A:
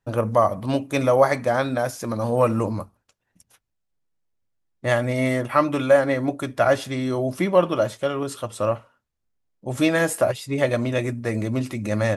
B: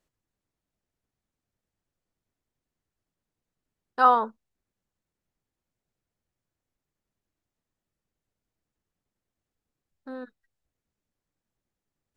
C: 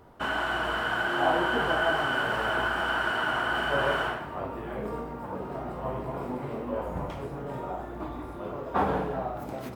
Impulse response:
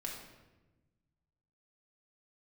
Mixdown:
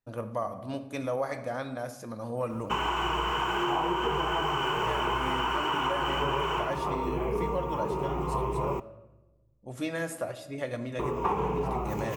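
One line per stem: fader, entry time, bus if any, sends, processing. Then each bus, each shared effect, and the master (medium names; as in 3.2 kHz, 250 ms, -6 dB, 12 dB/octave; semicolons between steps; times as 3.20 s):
-15.5 dB, 0.00 s, send -4.5 dB, none
-19.5 dB, 0.00 s, no send, none
+2.0 dB, 2.50 s, muted 8.80–10.99 s, send -20 dB, rippled EQ curve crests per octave 0.74, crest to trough 15 dB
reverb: on, RT60 1.1 s, pre-delay 4 ms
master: compression, threshold -25 dBFS, peak gain reduction 9.5 dB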